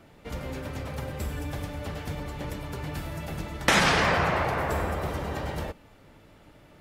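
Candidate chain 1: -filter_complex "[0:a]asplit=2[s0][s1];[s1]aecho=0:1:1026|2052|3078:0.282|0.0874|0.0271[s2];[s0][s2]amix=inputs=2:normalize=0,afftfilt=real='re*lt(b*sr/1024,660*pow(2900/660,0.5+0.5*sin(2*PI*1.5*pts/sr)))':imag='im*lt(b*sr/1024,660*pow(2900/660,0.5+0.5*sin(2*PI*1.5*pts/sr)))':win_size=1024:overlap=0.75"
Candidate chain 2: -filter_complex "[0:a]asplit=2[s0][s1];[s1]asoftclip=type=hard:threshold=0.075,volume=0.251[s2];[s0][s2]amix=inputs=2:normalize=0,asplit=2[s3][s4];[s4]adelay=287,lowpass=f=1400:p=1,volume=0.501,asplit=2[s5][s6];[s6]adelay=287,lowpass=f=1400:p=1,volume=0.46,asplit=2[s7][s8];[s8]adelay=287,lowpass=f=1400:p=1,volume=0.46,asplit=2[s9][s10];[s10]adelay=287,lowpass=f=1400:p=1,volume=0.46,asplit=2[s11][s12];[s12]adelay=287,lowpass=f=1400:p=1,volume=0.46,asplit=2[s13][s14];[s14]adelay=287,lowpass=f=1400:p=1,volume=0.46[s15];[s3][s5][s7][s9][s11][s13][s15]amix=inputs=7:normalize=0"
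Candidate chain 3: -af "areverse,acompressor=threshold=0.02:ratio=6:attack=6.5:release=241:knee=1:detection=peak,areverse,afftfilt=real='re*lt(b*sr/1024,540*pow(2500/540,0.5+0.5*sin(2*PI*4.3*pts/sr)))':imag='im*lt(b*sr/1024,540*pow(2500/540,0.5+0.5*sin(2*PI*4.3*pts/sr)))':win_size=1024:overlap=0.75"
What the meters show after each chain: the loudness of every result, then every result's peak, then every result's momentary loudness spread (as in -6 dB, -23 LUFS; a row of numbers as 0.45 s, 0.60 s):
-31.5 LUFS, -26.5 LUFS, -40.0 LUFS; -11.5 dBFS, -8.5 dBFS, -26.0 dBFS; 15 LU, 16 LU, 15 LU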